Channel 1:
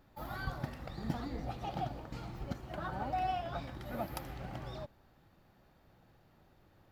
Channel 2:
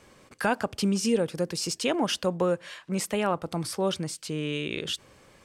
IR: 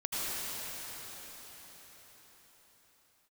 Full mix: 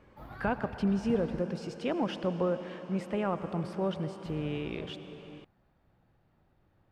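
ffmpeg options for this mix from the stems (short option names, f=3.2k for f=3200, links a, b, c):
-filter_complex "[0:a]volume=-5.5dB,asplit=3[a][b][c];[a]atrim=end=1.41,asetpts=PTS-STARTPTS,afade=t=out:st=1.406:d=0.004:c=hsin[d];[b]atrim=start=1.41:end=4.25,asetpts=PTS-STARTPTS,volume=0[e];[c]atrim=start=4.25,asetpts=PTS-STARTPTS,afade=t=in:d=0.004:c=hsin[f];[d][e][f]concat=n=3:v=0:a=1[g];[1:a]lowpass=f=2k:p=1,acontrast=78,volume=-12.5dB,asplit=2[h][i];[i]volume=-15.5dB[j];[2:a]atrim=start_sample=2205[k];[j][k]afir=irnorm=-1:irlink=0[l];[g][h][l]amix=inputs=3:normalize=0,bass=f=250:g=3,treble=f=4k:g=-10"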